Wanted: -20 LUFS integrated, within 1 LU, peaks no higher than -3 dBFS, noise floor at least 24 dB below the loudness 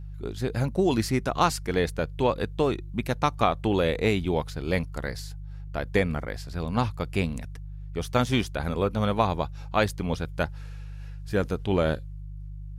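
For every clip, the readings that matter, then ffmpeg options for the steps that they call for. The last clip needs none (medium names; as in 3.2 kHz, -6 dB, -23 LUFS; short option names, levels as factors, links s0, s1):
hum 50 Hz; highest harmonic 150 Hz; hum level -35 dBFS; loudness -27.5 LUFS; peak level -8.0 dBFS; loudness target -20.0 LUFS
-> -af "bandreject=f=50:t=h:w=4,bandreject=f=100:t=h:w=4,bandreject=f=150:t=h:w=4"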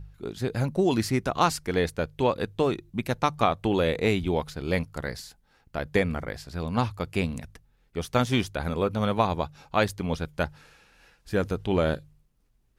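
hum not found; loudness -27.5 LUFS; peak level -8.0 dBFS; loudness target -20.0 LUFS
-> -af "volume=2.37,alimiter=limit=0.708:level=0:latency=1"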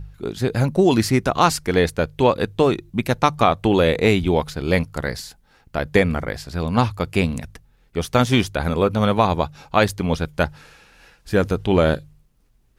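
loudness -20.5 LUFS; peak level -3.0 dBFS; noise floor -58 dBFS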